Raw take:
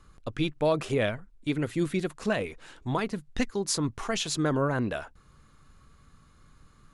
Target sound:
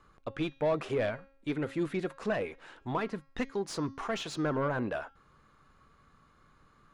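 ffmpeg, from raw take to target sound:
-filter_complex "[0:a]asplit=2[a][b];[b]highpass=f=720:p=1,volume=15dB,asoftclip=type=tanh:threshold=-14dB[c];[a][c]amix=inputs=2:normalize=0,lowpass=f=1.1k:p=1,volume=-6dB,bandreject=f=272.3:t=h:w=4,bandreject=f=544.6:t=h:w=4,bandreject=f=816.9:t=h:w=4,bandreject=f=1.0892k:t=h:w=4,bandreject=f=1.3615k:t=h:w=4,bandreject=f=1.6338k:t=h:w=4,bandreject=f=1.9061k:t=h:w=4,bandreject=f=2.1784k:t=h:w=4,bandreject=f=2.4507k:t=h:w=4,bandreject=f=2.723k:t=h:w=4,bandreject=f=2.9953k:t=h:w=4,bandreject=f=3.2676k:t=h:w=4,bandreject=f=3.5399k:t=h:w=4,bandreject=f=3.8122k:t=h:w=4,bandreject=f=4.0845k:t=h:w=4,bandreject=f=4.3568k:t=h:w=4,bandreject=f=4.6291k:t=h:w=4,bandreject=f=4.9014k:t=h:w=4,bandreject=f=5.1737k:t=h:w=4,bandreject=f=5.446k:t=h:w=4,bandreject=f=5.7183k:t=h:w=4,bandreject=f=5.9906k:t=h:w=4,bandreject=f=6.2629k:t=h:w=4,bandreject=f=6.5352k:t=h:w=4,volume=-5dB"

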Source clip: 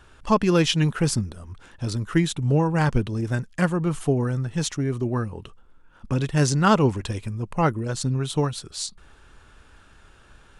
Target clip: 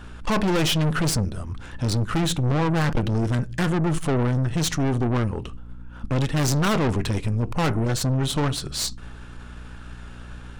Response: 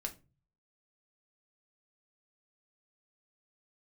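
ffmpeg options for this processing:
-filter_complex "[0:a]aeval=exprs='val(0)+0.00398*(sin(2*PI*60*n/s)+sin(2*PI*2*60*n/s)/2+sin(2*PI*3*60*n/s)/3+sin(2*PI*4*60*n/s)/4+sin(2*PI*5*60*n/s)/5)':c=same,asplit=2[a][b];[1:a]atrim=start_sample=2205,lowpass=5.7k[c];[b][c]afir=irnorm=-1:irlink=0,volume=-7.5dB[d];[a][d]amix=inputs=2:normalize=0,aeval=exprs='(tanh(22.4*val(0)+0.5)-tanh(0.5))/22.4':c=same,volume=7.5dB"

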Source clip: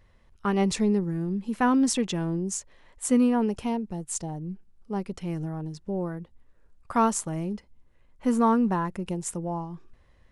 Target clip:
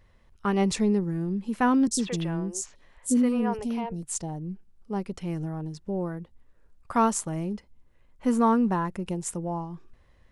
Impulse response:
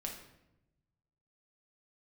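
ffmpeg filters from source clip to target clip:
-filter_complex "[0:a]asettb=1/sr,asplit=3[a][b][c];[a]atrim=end=1.874[d];[b]atrim=start=1.87:end=4.03,asetpts=PTS-STARTPTS,afade=t=in:d=0.004:c=qsin,afade=t=out:st=2.156:d=0.004:c=qsin,acrossover=split=430|3500[e][f][g];[g]adelay=40[h];[f]adelay=120[i];[e][i][h]amix=inputs=3:normalize=0,atrim=end_sample=95256[j];[c]atrim=start=4.026[k];[d][j]acrossfade=d=0.004:c1=hsin:c2=qsin[l];[l][k]acrossfade=d=0.004:c1=qsin:c2=hsin"

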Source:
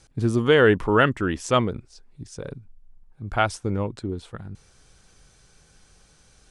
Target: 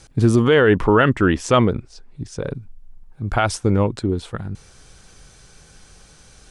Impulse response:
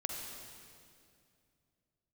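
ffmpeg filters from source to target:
-filter_complex "[0:a]asettb=1/sr,asplit=3[a][b][c];[a]atrim=end=0.394[d];[b]atrim=start=0.39:end=2.55,asetpts=PTS-STARTPTS,afade=t=in:d=0.004:c=qsin,afade=t=out:st=2.156:d=0.004:c=qsin,highshelf=f=5.8k:g=-8[e];[c]atrim=start=2.546[f];[d][e]acrossfade=d=0.004:c1=hsin:c2=qsin[g];[g][f]acrossfade=d=0.004:c1=qsin:c2=hsin,alimiter=level_in=12.5dB:limit=-1dB:release=50:level=0:latency=1,volume=-4dB"

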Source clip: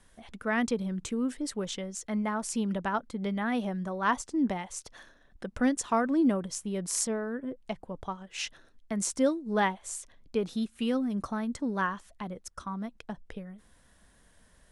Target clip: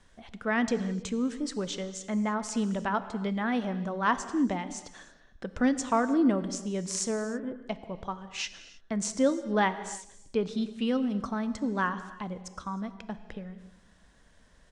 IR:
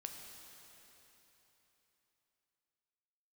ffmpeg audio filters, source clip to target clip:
-filter_complex "[0:a]lowpass=f=7.6k:w=0.5412,lowpass=f=7.6k:w=1.3066,asplit=2[a][b];[b]adelay=154,lowpass=f=820:p=1,volume=-21dB,asplit=2[c][d];[d]adelay=154,lowpass=f=820:p=1,volume=0.49,asplit=2[e][f];[f]adelay=154,lowpass=f=820:p=1,volume=0.49,asplit=2[g][h];[h]adelay=154,lowpass=f=820:p=1,volume=0.49[i];[a][c][e][g][i]amix=inputs=5:normalize=0,asplit=2[j][k];[1:a]atrim=start_sample=2205,afade=t=out:st=0.38:d=0.01,atrim=end_sample=17199[l];[k][l]afir=irnorm=-1:irlink=0,volume=1.5dB[m];[j][m]amix=inputs=2:normalize=0,volume=-3.5dB"

